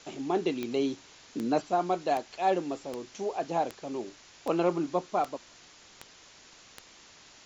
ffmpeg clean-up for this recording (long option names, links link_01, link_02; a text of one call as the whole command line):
ffmpeg -i in.wav -af "adeclick=threshold=4,afwtdn=0.0032" out.wav